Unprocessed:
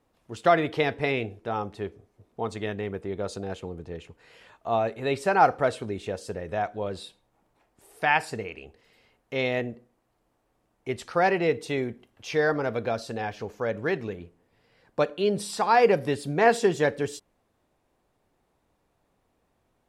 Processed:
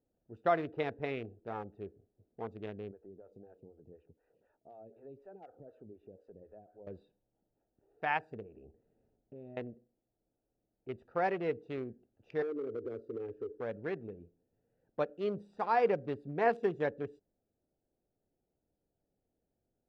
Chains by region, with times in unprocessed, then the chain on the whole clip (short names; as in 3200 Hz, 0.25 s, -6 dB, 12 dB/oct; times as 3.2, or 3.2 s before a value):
2.91–6.87 compressor 2.5:1, threshold -39 dBFS + photocell phaser 4 Hz
8.42–9.57 tilt shelf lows +5.5 dB, about 1300 Hz + notch 500 Hz, Q 9.7 + compressor 3:1, threshold -38 dBFS
12.42–13.61 EQ curve 120 Hz 0 dB, 180 Hz -18 dB, 250 Hz +6 dB, 430 Hz +15 dB, 700 Hz -17 dB, 1100 Hz 0 dB, 2100 Hz -10 dB + compressor 4:1, threshold -25 dBFS
whole clip: Wiener smoothing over 41 samples; LPF 1600 Hz 6 dB/oct; low shelf 270 Hz -5.5 dB; gain -7 dB